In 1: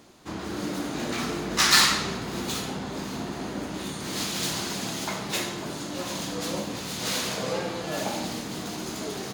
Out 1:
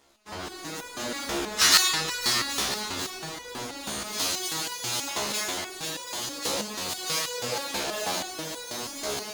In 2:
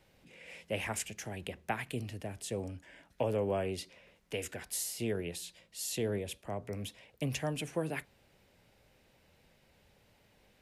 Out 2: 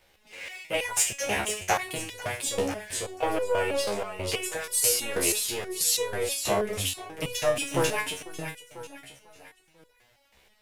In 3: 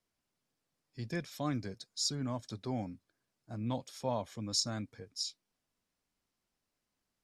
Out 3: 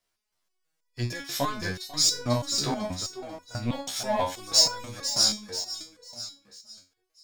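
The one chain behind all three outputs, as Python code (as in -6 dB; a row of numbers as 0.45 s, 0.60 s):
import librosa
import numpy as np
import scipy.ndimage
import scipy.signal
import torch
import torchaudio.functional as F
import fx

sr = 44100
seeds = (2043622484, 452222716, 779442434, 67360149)

p1 = fx.dynamic_eq(x, sr, hz=1900.0, q=0.72, threshold_db=-47.0, ratio=4.0, max_db=-3)
p2 = fx.leveller(p1, sr, passes=2)
p3 = fx.peak_eq(p2, sr, hz=170.0, db=-13.0, octaves=2.5)
p4 = p3 + fx.echo_feedback(p3, sr, ms=495, feedback_pct=38, wet_db=-6.5, dry=0)
p5 = fx.resonator_held(p4, sr, hz=6.2, low_hz=69.0, high_hz=490.0)
y = p5 * 10.0 ** (-30 / 20.0) / np.sqrt(np.mean(np.square(p5)))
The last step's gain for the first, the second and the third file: +6.5 dB, +18.5 dB, +19.0 dB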